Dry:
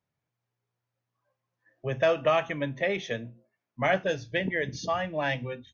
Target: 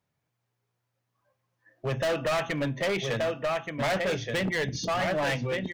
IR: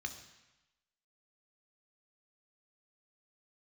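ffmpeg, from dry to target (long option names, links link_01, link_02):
-af "aecho=1:1:1176:0.447,asoftclip=type=hard:threshold=-29dB,volume=4.5dB"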